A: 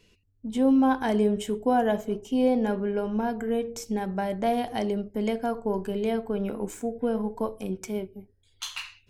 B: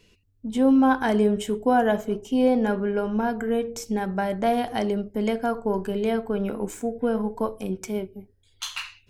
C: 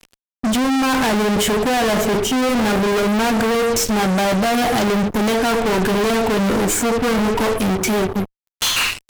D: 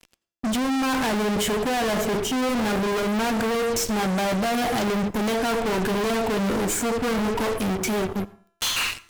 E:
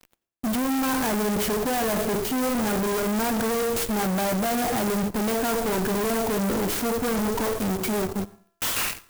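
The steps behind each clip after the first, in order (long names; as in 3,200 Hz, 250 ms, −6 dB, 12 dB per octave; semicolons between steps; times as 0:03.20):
dynamic equaliser 1,400 Hz, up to +5 dB, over −46 dBFS, Q 2.3; level +2.5 dB
brickwall limiter −15.5 dBFS, peak gain reduction 6 dB; fuzz pedal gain 47 dB, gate −51 dBFS; level −3 dB
tuned comb filter 340 Hz, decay 0.96 s, mix 40%; on a send at −20 dB: convolution reverb RT60 0.40 s, pre-delay 78 ms; on the sum: level −2 dB
converter with an unsteady clock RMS 0.071 ms; level −1 dB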